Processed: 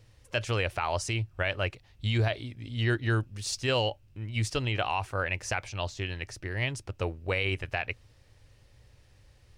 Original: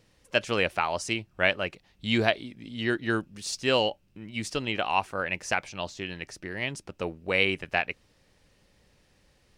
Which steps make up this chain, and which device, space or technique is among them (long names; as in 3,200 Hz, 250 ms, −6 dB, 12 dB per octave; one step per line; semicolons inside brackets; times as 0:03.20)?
car stereo with a boomy subwoofer (low shelf with overshoot 140 Hz +7 dB, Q 3; brickwall limiter −17 dBFS, peak gain reduction 10.5 dB)